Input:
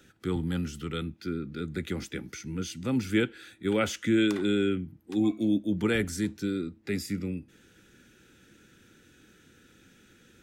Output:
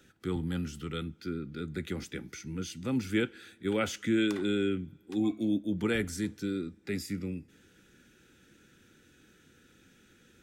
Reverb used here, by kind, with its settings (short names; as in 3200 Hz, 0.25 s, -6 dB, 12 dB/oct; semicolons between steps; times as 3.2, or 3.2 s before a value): two-slope reverb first 0.21 s, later 2.5 s, from -22 dB, DRR 18.5 dB; gain -3 dB